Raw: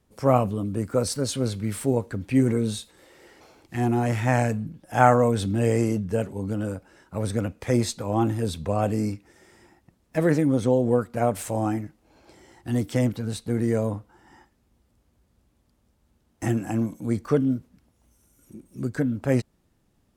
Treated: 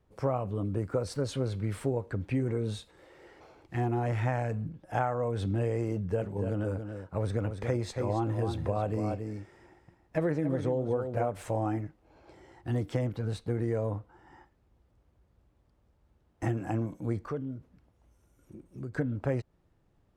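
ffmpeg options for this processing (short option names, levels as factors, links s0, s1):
-filter_complex "[0:a]asettb=1/sr,asplit=3[s0][s1][s2];[s0]atrim=end=5.944[s3];[s1]atrim=start=5.94:end=11.29,asetpts=PTS-STARTPTS,afade=t=in:d=0.004:c=qsin,afade=t=out:st=5.346:d=0.004:c=qsin,aecho=1:1:279:0.355,atrim=end_sample=235935[s4];[s2]atrim=start=11.286[s5];[s3][s4]acrossfade=d=0.004:c1=hsin:c2=qsin[s6];[s6][s5]acrossfade=d=0.004:c1=qsin:c2=hsin,asettb=1/sr,asplit=3[s7][s8][s9];[s7]atrim=end=17.244[s10];[s8]atrim=start=17.24:end=18.93,asetpts=PTS-STARTPTS,afade=t=in:d=0.004:c=qsin,afade=t=out:st=1.686:d=0.004:c=qsin,acompressor=threshold=0.0141:ratio=2:attack=3.2:release=140:knee=1:detection=peak[s11];[s9]atrim=start=18.926[s12];[s10][s11]acrossfade=d=0.004:c1=hsin:c2=qsin[s13];[s13][s12]acrossfade=d=0.004:c1=qsin:c2=hsin,lowpass=f=1600:p=1,equalizer=f=230:t=o:w=0.58:g=-8,acompressor=threshold=0.0562:ratio=12"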